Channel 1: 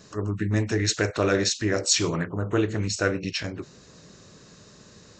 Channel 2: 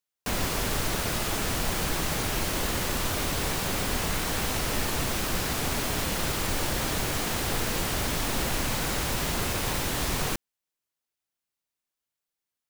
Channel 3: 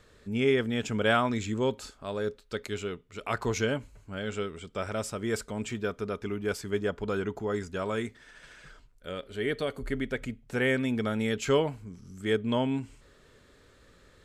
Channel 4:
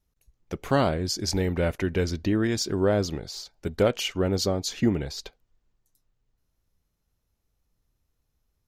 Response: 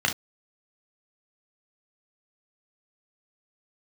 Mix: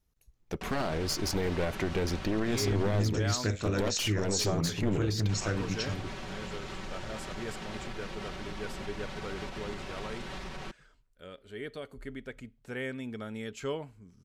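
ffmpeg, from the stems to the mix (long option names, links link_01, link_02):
-filter_complex "[0:a]bass=frequency=250:gain=11,treble=frequency=4000:gain=6,adelay=2450,volume=-10.5dB[link_01];[1:a]lowpass=3900,aecho=1:1:5.3:0.65,alimiter=level_in=1.5dB:limit=-24dB:level=0:latency=1:release=205,volume=-1.5dB,adelay=350,volume=-5.5dB,asplit=3[link_02][link_03][link_04];[link_02]atrim=end=3.02,asetpts=PTS-STARTPTS,afade=type=out:start_time=3.016:duration=0.004:curve=hsin[link_05];[link_03]atrim=start=3.02:end=5.29,asetpts=PTS-STARTPTS,volume=0[link_06];[link_04]atrim=start=5.29,asetpts=PTS-STARTPTS,afade=type=in:duration=0.004:curve=hsin[link_07];[link_05][link_06][link_07]concat=n=3:v=0:a=1[link_08];[2:a]adelay=2150,volume=-10dB[link_09];[3:a]bandreject=frequency=550:width=18,aeval=exprs='clip(val(0),-1,0.0266)':channel_layout=same,volume=-0.5dB[link_10];[link_01][link_08][link_09][link_10]amix=inputs=4:normalize=0,alimiter=limit=-19.5dB:level=0:latency=1:release=61"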